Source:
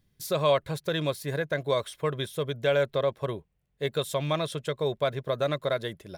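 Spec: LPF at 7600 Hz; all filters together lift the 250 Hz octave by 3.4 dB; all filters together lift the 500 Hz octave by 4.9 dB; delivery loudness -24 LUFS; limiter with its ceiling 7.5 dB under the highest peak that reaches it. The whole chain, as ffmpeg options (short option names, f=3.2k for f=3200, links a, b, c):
-af "lowpass=7.6k,equalizer=f=250:t=o:g=3.5,equalizer=f=500:t=o:g=5,volume=4dB,alimiter=limit=-12.5dB:level=0:latency=1"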